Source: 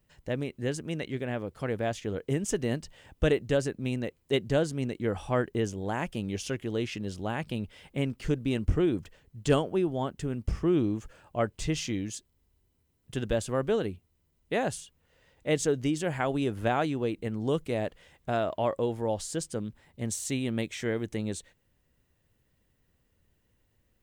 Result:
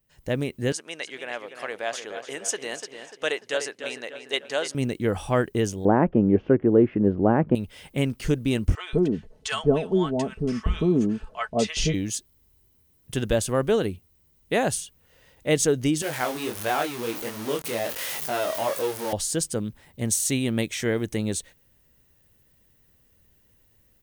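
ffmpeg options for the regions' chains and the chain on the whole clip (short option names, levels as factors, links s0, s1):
-filter_complex "[0:a]asettb=1/sr,asplit=3[s0][s1][s2];[s0]atrim=end=0.724[s3];[s1]atrim=start=0.72:end=4.75,asetpts=PTS-STARTPTS,afade=t=in:d=0.004:c=qsin,afade=t=out:st=4.026:d=0.004:c=qsin,highpass=740,lowpass=7800,asplit=2[s4][s5];[s5]adelay=295,lowpass=f=4000:p=1,volume=0.376,asplit=2[s6][s7];[s7]adelay=295,lowpass=f=4000:p=1,volume=0.5,asplit=2[s8][s9];[s9]adelay=295,lowpass=f=4000:p=1,volume=0.5,asplit=2[s10][s11];[s11]adelay=295,lowpass=f=4000:p=1,volume=0.5,asplit=2[s12][s13];[s13]adelay=295,lowpass=f=4000:p=1,volume=0.5,asplit=2[s14][s15];[s15]adelay=295,lowpass=f=4000:p=1,volume=0.5[s16];[s4][s6][s8][s10][s12][s14][s16]amix=inputs=7:normalize=0,atrim=end_sample=177723[s17];[s2]atrim=start=4.746[s18];[s3][s17]acrossfade=d=0.004:c1=hsin:c2=qsin[s19];[s19][s18]acrossfade=d=0.004:c1=qsin:c2=hsin,asettb=1/sr,asplit=3[s20][s21][s22];[s20]atrim=end=5.854[s23];[s21]atrim=start=5.85:end=7.55,asetpts=PTS-STARTPTS,afade=t=in:d=0.004:c=qsin,afade=t=out:st=1.696:d=0.004:c=qsin,lowpass=f=1700:w=0.5412,lowpass=f=1700:w=1.3066,equalizer=f=330:t=o:w=2.9:g=14[s24];[s22]atrim=start=7.546[s25];[s23][s24]acrossfade=d=0.004:c1=hsin:c2=qsin[s26];[s26][s25]acrossfade=d=0.004:c1=qsin:c2=hsin,asettb=1/sr,asplit=3[s27][s28][s29];[s27]atrim=end=8.754[s30];[s28]atrim=start=8.75:end=11.94,asetpts=PTS-STARTPTS,afade=t=in:d=0.004:c=qsin,afade=t=out:st=3.186:d=0.004:c=qsin,lowpass=5800,aecho=1:1:4.6:0.6,atrim=end_sample=140679,acrossover=split=870[s31][s32];[s31]adelay=180[s33];[s33][s32]amix=inputs=2:normalize=0,atrim=end_sample=140679[s34];[s29]atrim=start=11.936[s35];[s30][s34]acrossfade=d=0.004:c1=hsin:c2=qsin[s36];[s36][s35]acrossfade=d=0.004:c1=qsin:c2=hsin,asettb=1/sr,asplit=3[s37][s38][s39];[s37]atrim=end=16.024[s40];[s38]atrim=start=16.02:end=19.13,asetpts=PTS-STARTPTS,afade=t=in:d=0.004:c=qsin,afade=t=out:st=3.106:d=0.004:c=qsin,aeval=exprs='val(0)+0.5*0.0299*sgn(val(0))':c=same,highpass=f=560:p=1,flanger=delay=19:depth=7.4:speed=1.4[s41];[s39]atrim=start=19.126[s42];[s40][s41]acrossfade=d=0.004:c1=hsin:c2=qsin[s43];[s43][s42]acrossfade=d=0.004:c1=qsin:c2=hsin,dynaudnorm=f=120:g=3:m=3.55,highshelf=f=7100:g=11,bandreject=f=7500:w=14,volume=0.531"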